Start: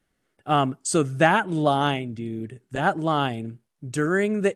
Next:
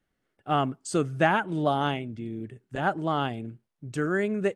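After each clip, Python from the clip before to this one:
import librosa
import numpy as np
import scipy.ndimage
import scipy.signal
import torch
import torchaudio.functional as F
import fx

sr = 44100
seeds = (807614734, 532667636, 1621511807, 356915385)

y = fx.peak_eq(x, sr, hz=9900.0, db=-7.0, octaves=1.6)
y = y * librosa.db_to_amplitude(-4.0)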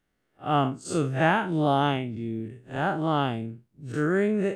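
y = fx.spec_blur(x, sr, span_ms=103.0)
y = y * librosa.db_to_amplitude(4.0)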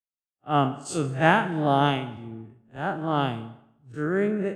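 y = fx.rev_plate(x, sr, seeds[0], rt60_s=1.4, hf_ratio=0.75, predelay_ms=110, drr_db=12.5)
y = fx.band_widen(y, sr, depth_pct=100)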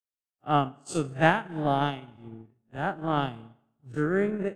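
y = fx.transient(x, sr, attack_db=8, sustain_db=-10)
y = fx.rider(y, sr, range_db=10, speed_s=2.0)
y = y * librosa.db_to_amplitude(-4.5)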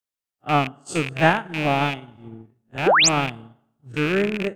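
y = fx.rattle_buzz(x, sr, strikes_db=-35.0, level_db=-20.0)
y = fx.spec_paint(y, sr, seeds[1], shape='rise', start_s=2.86, length_s=0.23, low_hz=310.0, high_hz=8300.0, level_db=-19.0)
y = y * librosa.db_to_amplitude(4.0)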